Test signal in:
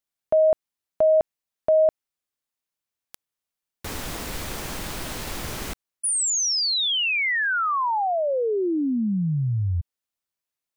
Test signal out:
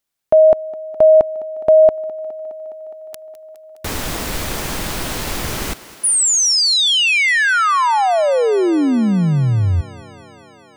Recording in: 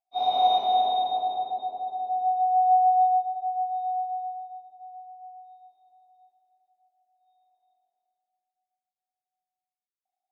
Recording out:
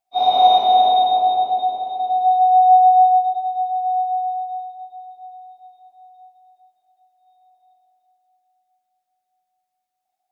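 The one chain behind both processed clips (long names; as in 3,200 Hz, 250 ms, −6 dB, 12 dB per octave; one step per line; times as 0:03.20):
feedback echo with a high-pass in the loop 207 ms, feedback 82%, high-pass 150 Hz, level −18.5 dB
level +8.5 dB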